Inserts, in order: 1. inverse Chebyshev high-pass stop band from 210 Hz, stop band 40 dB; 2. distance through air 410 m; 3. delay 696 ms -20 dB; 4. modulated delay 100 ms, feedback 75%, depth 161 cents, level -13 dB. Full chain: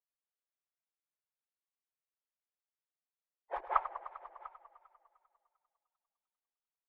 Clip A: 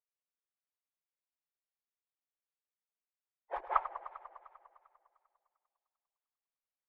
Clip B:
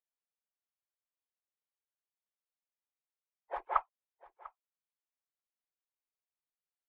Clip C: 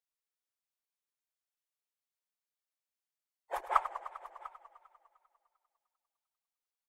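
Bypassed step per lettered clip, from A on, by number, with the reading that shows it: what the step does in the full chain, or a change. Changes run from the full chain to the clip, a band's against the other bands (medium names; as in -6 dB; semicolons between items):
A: 3, momentary loudness spread change +2 LU; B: 4, loudness change +2.0 LU; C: 2, loudness change +2.0 LU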